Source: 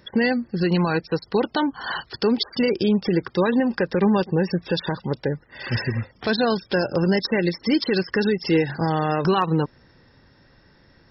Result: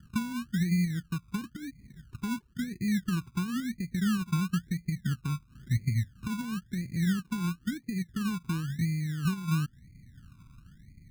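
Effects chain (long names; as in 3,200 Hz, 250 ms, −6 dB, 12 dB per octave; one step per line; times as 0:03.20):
downward compressor 2 to 1, threshold −33 dBFS, peak gain reduction 10 dB
inverse Chebyshev low-pass filter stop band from 690 Hz, stop band 60 dB
sample-and-hold swept by an LFO 28×, swing 60% 0.98 Hz
level +5.5 dB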